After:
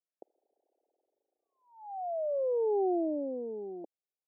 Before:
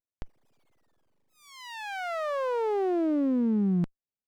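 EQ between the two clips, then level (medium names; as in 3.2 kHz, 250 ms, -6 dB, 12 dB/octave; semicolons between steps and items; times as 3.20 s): steep high-pass 350 Hz 36 dB/octave; steep low-pass 800 Hz 72 dB/octave; 0.0 dB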